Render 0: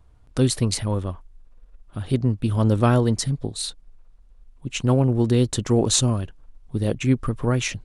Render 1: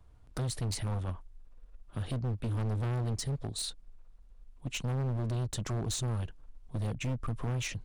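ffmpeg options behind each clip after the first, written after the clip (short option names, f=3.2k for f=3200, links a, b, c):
-filter_complex "[0:a]acrossover=split=180[a][b];[b]acompressor=threshold=-28dB:ratio=8[c];[a][c]amix=inputs=2:normalize=0,volume=26dB,asoftclip=hard,volume=-26dB,volume=-4dB"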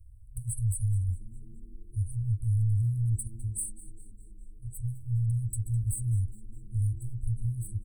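-filter_complex "[0:a]afftfilt=real='re*(1-between(b*sr/4096,120,7800))':imag='im*(1-between(b*sr/4096,120,7800))':win_size=4096:overlap=0.75,asplit=5[a][b][c][d][e];[b]adelay=206,afreqshift=-110,volume=-19dB[f];[c]adelay=412,afreqshift=-220,volume=-25.6dB[g];[d]adelay=618,afreqshift=-330,volume=-32.1dB[h];[e]adelay=824,afreqshift=-440,volume=-38.7dB[i];[a][f][g][h][i]amix=inputs=5:normalize=0,volume=7dB"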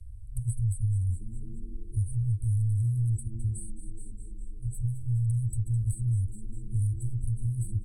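-filter_complex "[0:a]lowpass=9.6k,acrossover=split=130|440[a][b][c];[a]acompressor=threshold=-37dB:ratio=4[d];[b]acompressor=threshold=-43dB:ratio=4[e];[c]acompressor=threshold=-55dB:ratio=4[f];[d][e][f]amix=inputs=3:normalize=0,volume=8.5dB"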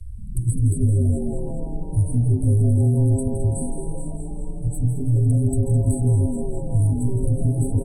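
-filter_complex "[0:a]asplit=7[a][b][c][d][e][f][g];[b]adelay=166,afreqshift=140,volume=-10dB[h];[c]adelay=332,afreqshift=280,volume=-15.8dB[i];[d]adelay=498,afreqshift=420,volume=-21.7dB[j];[e]adelay=664,afreqshift=560,volume=-27.5dB[k];[f]adelay=830,afreqshift=700,volume=-33.4dB[l];[g]adelay=996,afreqshift=840,volume=-39.2dB[m];[a][h][i][j][k][l][m]amix=inputs=7:normalize=0,volume=8.5dB"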